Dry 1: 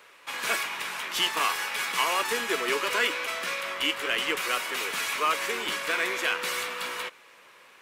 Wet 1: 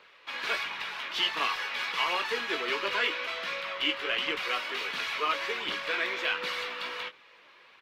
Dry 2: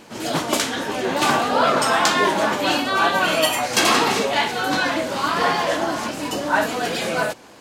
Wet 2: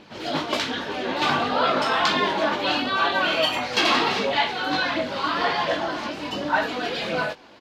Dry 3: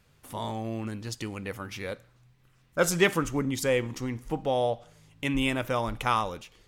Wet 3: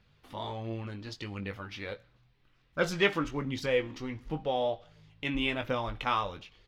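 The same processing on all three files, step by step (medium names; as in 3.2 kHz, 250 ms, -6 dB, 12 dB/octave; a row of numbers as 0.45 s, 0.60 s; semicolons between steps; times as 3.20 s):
phaser 1.4 Hz, delay 3.7 ms, feedback 34%; resonant high shelf 6 kHz -14 dB, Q 1.5; doubling 20 ms -8 dB; trim -5 dB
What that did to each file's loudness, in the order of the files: -2.5 LU, -3.5 LU, -3.5 LU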